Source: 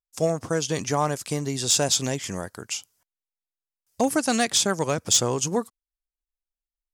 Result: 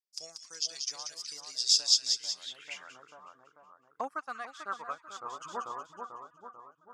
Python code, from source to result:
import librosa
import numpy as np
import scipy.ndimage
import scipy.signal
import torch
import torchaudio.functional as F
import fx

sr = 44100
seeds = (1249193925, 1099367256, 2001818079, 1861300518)

y = fx.dereverb_blind(x, sr, rt60_s=1.9)
y = fx.echo_split(y, sr, split_hz=1400.0, low_ms=442, high_ms=185, feedback_pct=52, wet_db=-5.5)
y = fx.filter_sweep_bandpass(y, sr, from_hz=5000.0, to_hz=1200.0, start_s=2.34, end_s=2.97, q=6.2)
y = fx.upward_expand(y, sr, threshold_db=-47.0, expansion=1.5, at=(4.07, 5.4), fade=0.02)
y = F.gain(torch.from_numpy(y), 5.0).numpy()